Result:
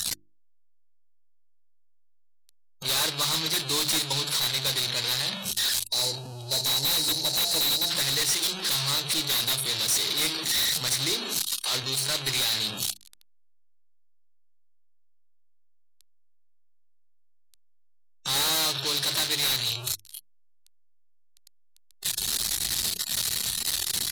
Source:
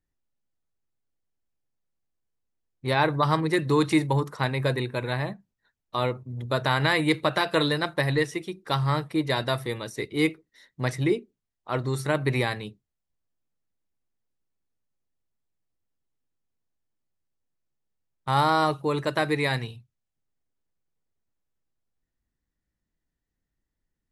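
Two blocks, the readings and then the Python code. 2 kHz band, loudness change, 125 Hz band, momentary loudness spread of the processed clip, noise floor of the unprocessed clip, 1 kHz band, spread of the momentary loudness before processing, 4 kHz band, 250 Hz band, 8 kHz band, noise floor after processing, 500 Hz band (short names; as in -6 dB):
-3.5 dB, +1.5 dB, -10.5 dB, 6 LU, -84 dBFS, -9.5 dB, 10 LU, +11.5 dB, -12.0 dB, +20.5 dB, -57 dBFS, -11.0 dB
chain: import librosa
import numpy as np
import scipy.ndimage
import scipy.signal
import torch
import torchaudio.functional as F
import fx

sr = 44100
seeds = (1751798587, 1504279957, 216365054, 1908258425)

y = fx.delta_mod(x, sr, bps=64000, step_db=-23.0)
y = fx.noise_reduce_blind(y, sr, reduce_db=18)
y = scipy.signal.lfilter([1.0, -0.9], [1.0], y)
y = fx.spec_box(y, sr, start_s=5.85, length_s=2.05, low_hz=950.0, high_hz=3800.0, gain_db=-12)
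y = fx.peak_eq(y, sr, hz=4000.0, db=12.0, octaves=0.63)
y = fx.fold_sine(y, sr, drive_db=8, ceiling_db=-19.0)
y = fx.hum_notches(y, sr, base_hz=50, count=7)
y = F.gain(torch.from_numpy(y), -1.5).numpy()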